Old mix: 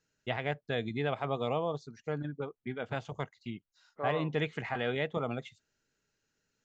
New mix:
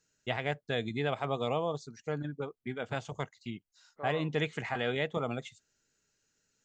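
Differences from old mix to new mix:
second voice -6.0 dB; master: remove air absorption 110 m

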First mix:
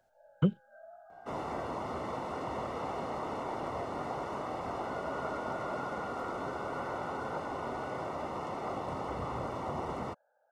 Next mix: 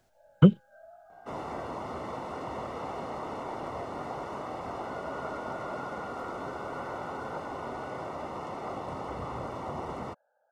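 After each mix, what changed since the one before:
speech +9.5 dB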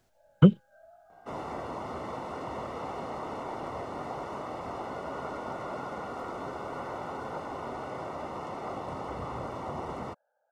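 first sound -3.5 dB

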